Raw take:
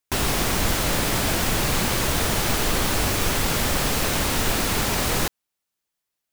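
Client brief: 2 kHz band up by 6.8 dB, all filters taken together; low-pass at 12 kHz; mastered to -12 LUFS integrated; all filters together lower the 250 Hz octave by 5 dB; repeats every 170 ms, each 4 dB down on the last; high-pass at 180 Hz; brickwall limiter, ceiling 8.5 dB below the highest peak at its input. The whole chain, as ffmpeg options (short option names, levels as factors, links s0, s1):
-af "highpass=180,lowpass=12000,equalizer=f=250:t=o:g=-5,equalizer=f=2000:t=o:g=8.5,alimiter=limit=0.15:level=0:latency=1,aecho=1:1:170|340|510|680|850|1020|1190|1360|1530:0.631|0.398|0.25|0.158|0.0994|0.0626|0.0394|0.0249|0.0157,volume=3.16"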